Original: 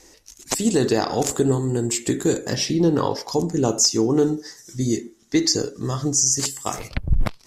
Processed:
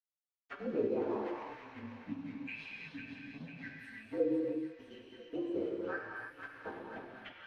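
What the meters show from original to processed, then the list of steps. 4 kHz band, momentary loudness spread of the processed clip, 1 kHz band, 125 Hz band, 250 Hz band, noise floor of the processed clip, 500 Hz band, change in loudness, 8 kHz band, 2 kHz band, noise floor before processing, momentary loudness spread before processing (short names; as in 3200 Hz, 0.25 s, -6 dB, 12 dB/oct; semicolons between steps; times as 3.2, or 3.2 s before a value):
-30.5 dB, 14 LU, -17.5 dB, -28.5 dB, -17.5 dB, under -85 dBFS, -15.0 dB, -18.5 dB, under -40 dB, -9.0 dB, -53 dBFS, 10 LU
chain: inharmonic rescaling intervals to 118%; HPF 55 Hz; notches 60/120 Hz; spectral delete 1.39–4.13, 280–1500 Hz; dynamic EQ 2000 Hz, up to +5 dB, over -47 dBFS, Q 0.84; wah 0.85 Hz 360–3200 Hz, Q 2.1; crossover distortion -51.5 dBFS; rotary speaker horn 6 Hz, later 0.9 Hz, at 2.17; air absorption 230 m; on a send: thin delay 0.498 s, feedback 53%, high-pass 1500 Hz, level -7.5 dB; on the sum: non-linear reverb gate 0.36 s flat, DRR -0.5 dB; three-band squash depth 40%; gain -3 dB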